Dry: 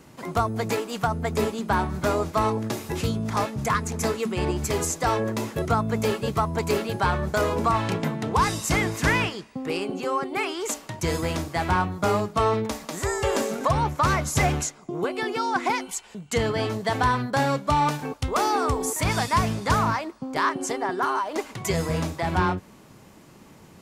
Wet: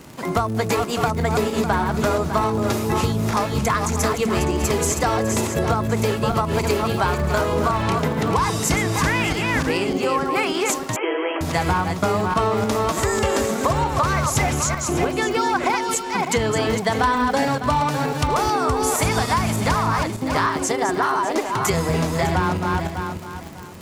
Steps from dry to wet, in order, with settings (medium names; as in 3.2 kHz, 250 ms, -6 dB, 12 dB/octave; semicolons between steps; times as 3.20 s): backward echo that repeats 301 ms, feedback 46%, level -6 dB; 17.03–17.48 s: comb 4 ms, depth 98%; compression 6:1, threshold -24 dBFS, peak gain reduction 11.5 dB; crackle 80 per s -36 dBFS; 10.96–11.41 s: brick-wall FIR band-pass 280–3300 Hz; trim +7.5 dB